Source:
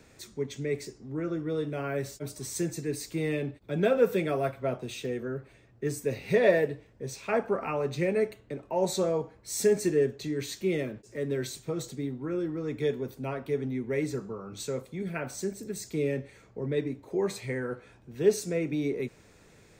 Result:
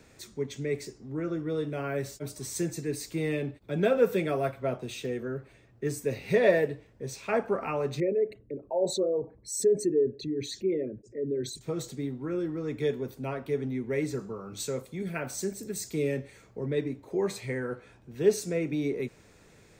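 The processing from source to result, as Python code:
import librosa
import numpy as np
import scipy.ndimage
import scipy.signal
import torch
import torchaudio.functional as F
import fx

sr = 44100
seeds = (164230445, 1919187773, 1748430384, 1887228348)

y = fx.envelope_sharpen(x, sr, power=2.0, at=(8.0, 11.61))
y = fx.high_shelf(y, sr, hz=5100.0, db=5.5, at=(14.19, 16.65))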